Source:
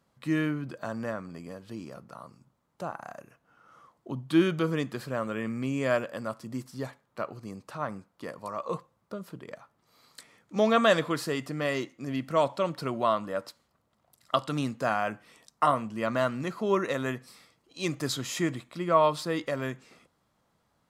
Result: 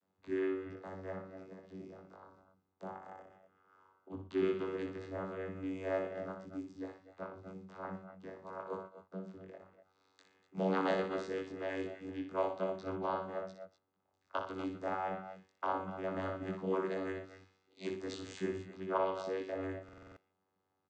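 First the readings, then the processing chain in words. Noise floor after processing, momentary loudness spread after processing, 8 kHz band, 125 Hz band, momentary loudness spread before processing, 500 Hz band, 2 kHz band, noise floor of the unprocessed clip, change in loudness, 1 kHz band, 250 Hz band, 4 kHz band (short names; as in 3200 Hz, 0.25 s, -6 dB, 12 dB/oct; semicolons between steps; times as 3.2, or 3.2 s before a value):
-82 dBFS, 16 LU, under -15 dB, -12.5 dB, 18 LU, -8.0 dB, -11.5 dB, -73 dBFS, -9.5 dB, -10.0 dB, -9.5 dB, -16.0 dB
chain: low shelf 250 Hz -10 dB; chorus 0.89 Hz, delay 19 ms, depth 3.7 ms; soft clip -18 dBFS, distortion -20 dB; vocoder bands 16, saw 94.7 Hz; tapped delay 61/119/239/251 ms -7/-16/-16/-14 dB; stuck buffer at 19.84, samples 2048, times 6; gain -3 dB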